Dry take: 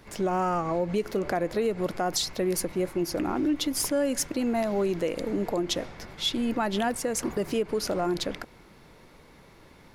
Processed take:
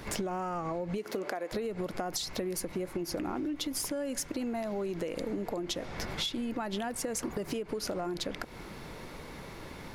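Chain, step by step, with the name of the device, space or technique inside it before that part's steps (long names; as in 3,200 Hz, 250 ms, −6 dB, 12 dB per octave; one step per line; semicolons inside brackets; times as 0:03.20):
0:00.97–0:01.51: high-pass filter 160 Hz → 520 Hz 12 dB per octave
serial compression, leveller first (downward compressor 2 to 1, threshold −29 dBFS, peak gain reduction 4.5 dB; downward compressor 10 to 1, threshold −40 dBFS, peak gain reduction 14.5 dB)
level +8.5 dB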